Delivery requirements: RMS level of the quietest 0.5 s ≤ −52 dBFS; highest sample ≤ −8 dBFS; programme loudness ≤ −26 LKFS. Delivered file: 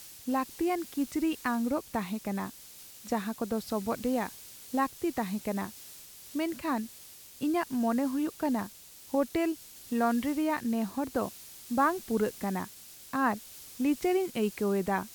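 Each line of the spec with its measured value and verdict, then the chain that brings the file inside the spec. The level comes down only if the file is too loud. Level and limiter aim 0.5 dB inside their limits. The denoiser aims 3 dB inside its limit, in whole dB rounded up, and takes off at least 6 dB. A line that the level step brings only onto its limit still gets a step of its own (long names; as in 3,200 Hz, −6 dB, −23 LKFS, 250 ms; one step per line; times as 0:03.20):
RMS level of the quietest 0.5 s −50 dBFS: out of spec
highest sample −15.0 dBFS: in spec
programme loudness −31.5 LKFS: in spec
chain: broadband denoise 6 dB, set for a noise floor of −50 dBFS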